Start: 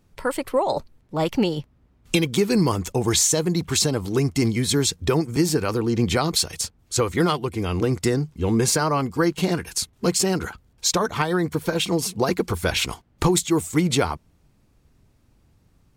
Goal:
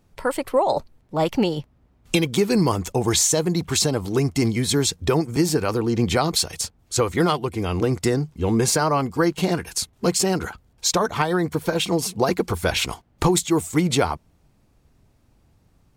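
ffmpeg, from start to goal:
ffmpeg -i in.wav -af "equalizer=frequency=720:width_type=o:width=0.9:gain=3.5" out.wav

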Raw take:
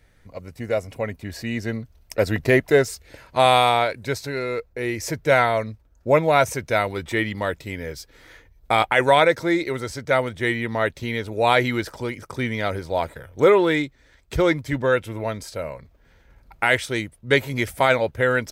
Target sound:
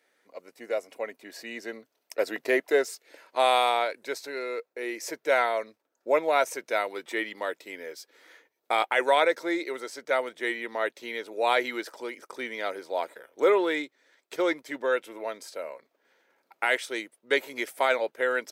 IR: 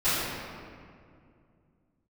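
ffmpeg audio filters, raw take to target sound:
-af "highpass=frequency=320:width=0.5412,highpass=frequency=320:width=1.3066,volume=-6dB"

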